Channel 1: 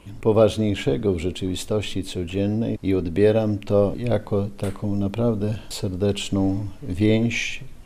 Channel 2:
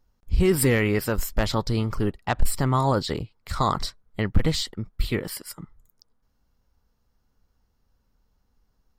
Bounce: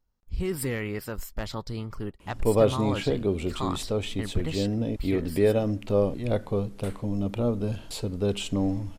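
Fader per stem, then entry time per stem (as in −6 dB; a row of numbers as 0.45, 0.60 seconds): −4.5, −9.5 decibels; 2.20, 0.00 seconds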